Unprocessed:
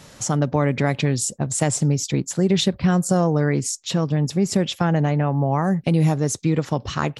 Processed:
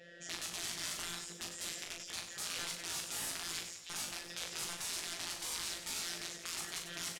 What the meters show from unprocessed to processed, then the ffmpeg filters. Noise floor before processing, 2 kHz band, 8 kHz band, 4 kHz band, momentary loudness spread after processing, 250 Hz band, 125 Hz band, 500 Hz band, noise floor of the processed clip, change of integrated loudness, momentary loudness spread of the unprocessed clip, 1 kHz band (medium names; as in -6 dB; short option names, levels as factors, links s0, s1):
-47 dBFS, -12.0 dB, -11.5 dB, -8.0 dB, 4 LU, -34.5 dB, -39.0 dB, -30.5 dB, -51 dBFS, -18.5 dB, 5 LU, -22.5 dB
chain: -filter_complex "[0:a]asplit=3[s0][s1][s2];[s0]bandpass=f=530:t=q:w=8,volume=1[s3];[s1]bandpass=f=1840:t=q:w=8,volume=0.501[s4];[s2]bandpass=f=2480:t=q:w=8,volume=0.355[s5];[s3][s4][s5]amix=inputs=3:normalize=0,afftfilt=real='hypot(re,im)*cos(PI*b)':imag='0':win_size=1024:overlap=0.75,bandreject=f=900:w=9,aeval=exprs='(mod(47.3*val(0)+1,2)-1)/47.3':c=same,lowpass=9300,afftfilt=real='re*lt(hypot(re,im),0.01)':imag='im*lt(hypot(re,im),0.01)':win_size=1024:overlap=0.75,asplit=2[s6][s7];[s7]adelay=18,volume=0.562[s8];[s6][s8]amix=inputs=2:normalize=0,aecho=1:1:40|96|174.4|284.2|437.8:0.631|0.398|0.251|0.158|0.1,volume=2.11"